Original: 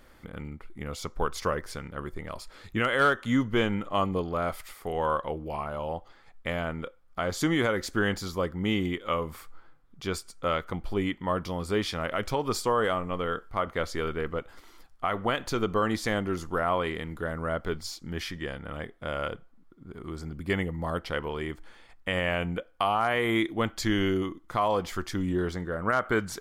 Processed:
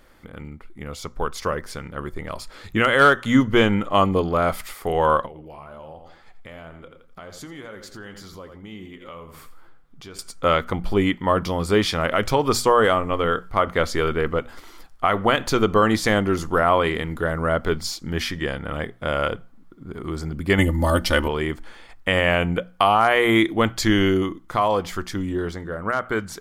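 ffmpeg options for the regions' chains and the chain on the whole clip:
-filter_complex "[0:a]asettb=1/sr,asplit=3[a][b][c];[a]atrim=end=5.264[d];[b]atrim=start=5.26:end=10.19,asetpts=PTS-STARTPTS,afade=t=in:d=0.004:c=qsin,afade=t=out:st=4.926:d=0.004:c=qsin,aecho=1:1:84|168|252:0.251|0.0703|0.0197,atrim=end_sample=217413,acompressor=threshold=-45dB:ratio=3:attack=3.2:release=140:knee=1:detection=peak,flanger=delay=4.3:depth=4.3:regen=74:speed=2:shape=triangular[e];[c]atrim=start=10.186[f];[d][e]acrossfade=d=0.004:c1=hsin:c2=qsin[g];[g][f]acrossfade=d=0.004:c1=qsin:c2=hsin,asettb=1/sr,asplit=3[h][i][j];[h]atrim=end=20.584[k];[i]atrim=start=20.58:end=21.28,asetpts=PTS-STARTPTS,afade=t=in:d=0.004:c=qsin,afade=t=out:st=0.696:d=0.004:c=qsin,bass=f=250:g=6,treble=f=4k:g=11,aecho=1:1:3.4:0.74,atrim=end_sample=30870[l];[j]atrim=start=21.276[m];[k][l]acrossfade=d=0.004:c1=hsin:c2=qsin[n];[n][m]acrossfade=d=0.004:c1=qsin:c2=hsin,bandreject=f=60:t=h:w=6,bandreject=f=120:t=h:w=6,bandreject=f=180:t=h:w=6,bandreject=f=240:t=h:w=6,dynaudnorm=f=260:g=17:m=7dB,volume=2dB"

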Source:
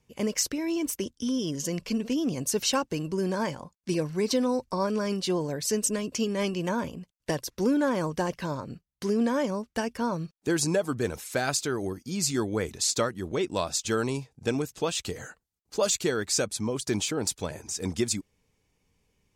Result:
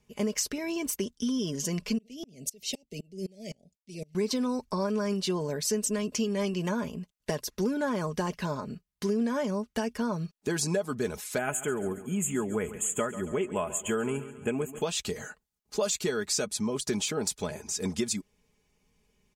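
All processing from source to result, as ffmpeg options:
-filter_complex "[0:a]asettb=1/sr,asplit=3[a][b][c];[a]atrim=end=1.984[d];[b]atrim=start=1.98:end=4.15,asetpts=PTS-STARTPTS,afade=t=in:d=0.004:c=qsin,afade=t=out:st=2.166:d=0.004:c=qsin,acrossover=split=130|3000[e][f][g];[f]acompressor=threshold=-31dB:ratio=3:attack=3.2:release=140:knee=2.83:detection=peak[h];[e][h][g]amix=inputs=3:normalize=0,asuperstop=centerf=1200:order=12:qfactor=0.94,aeval=exprs='val(0)*pow(10,-32*if(lt(mod(-3.9*n/s,1),2*abs(-3.9)/1000),1-mod(-3.9*n/s,1)/(2*abs(-3.9)/1000),(mod(-3.9*n/s,1)-2*abs(-3.9)/1000)/(1-2*abs(-3.9)/1000))/20)':c=same[i];[c]atrim=start=4.146[j];[d][i]acrossfade=d=0.004:c1=hsin:c2=qsin[k];[k][j]acrossfade=d=0.004:c1=qsin:c2=hsin,asettb=1/sr,asplit=3[l][m][n];[l]atrim=end=11.384[o];[m]atrim=start=11.38:end=14.82,asetpts=PTS-STARTPTS,afade=t=in:d=0.004:c=qsin,afade=t=out:st=3.436:d=0.004:c=qsin,asuperstop=centerf=4700:order=20:qfactor=1.4,aecho=1:1:138|276|414|552:0.158|0.0761|0.0365|0.0175,atrim=end_sample=151704[p];[n]atrim=start=14.816[q];[o][p]acrossfade=d=0.004:c1=hsin:c2=qsin[r];[r][q]acrossfade=d=0.004:c1=qsin:c2=hsin,aecho=1:1:4.8:0.54,acompressor=threshold=-27dB:ratio=2.5"

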